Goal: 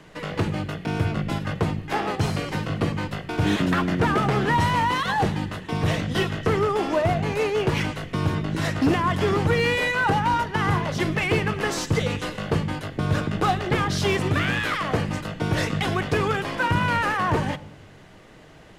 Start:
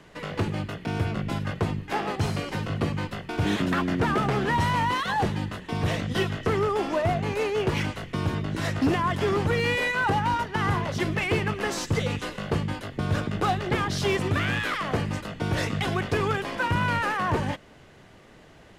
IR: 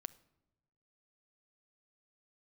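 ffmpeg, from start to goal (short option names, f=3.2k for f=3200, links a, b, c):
-filter_complex "[1:a]atrim=start_sample=2205[a];[0:a][a]afir=irnorm=-1:irlink=0,volume=7dB"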